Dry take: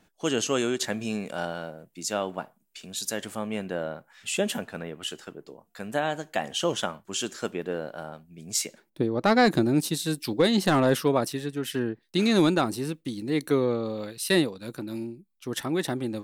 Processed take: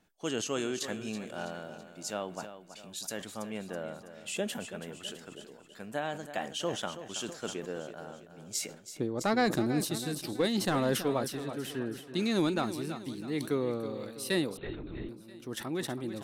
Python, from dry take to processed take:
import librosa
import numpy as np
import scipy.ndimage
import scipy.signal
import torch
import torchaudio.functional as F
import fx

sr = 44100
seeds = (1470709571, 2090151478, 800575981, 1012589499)

p1 = x + fx.echo_feedback(x, sr, ms=327, feedback_pct=46, wet_db=-12, dry=0)
p2 = fx.lpc_vocoder(p1, sr, seeds[0], excitation='whisper', order=10, at=(14.57, 15.09))
p3 = fx.sustainer(p2, sr, db_per_s=110.0)
y = p3 * librosa.db_to_amplitude(-7.5)